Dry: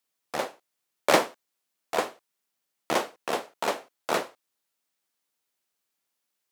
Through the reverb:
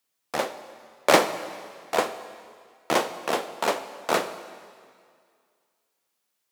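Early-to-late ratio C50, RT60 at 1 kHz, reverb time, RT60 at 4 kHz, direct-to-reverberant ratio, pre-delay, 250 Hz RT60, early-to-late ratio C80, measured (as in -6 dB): 12.5 dB, 2.1 s, 2.1 s, 2.0 s, 11.0 dB, 17 ms, 2.0 s, 13.0 dB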